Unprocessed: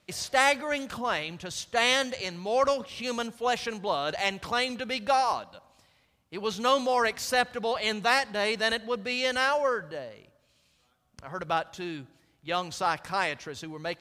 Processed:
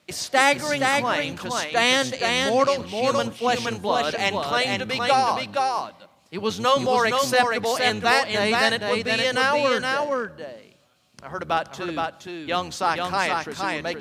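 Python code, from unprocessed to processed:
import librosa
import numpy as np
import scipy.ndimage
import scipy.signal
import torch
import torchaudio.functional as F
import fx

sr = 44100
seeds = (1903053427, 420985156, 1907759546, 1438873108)

y = fx.octave_divider(x, sr, octaves=1, level_db=-1.0)
y = scipy.signal.sosfilt(scipy.signal.butter(2, 140.0, 'highpass', fs=sr, output='sos'), y)
y = y + 10.0 ** (-3.5 / 20.0) * np.pad(y, (int(470 * sr / 1000.0), 0))[:len(y)]
y = y * librosa.db_to_amplitude(4.5)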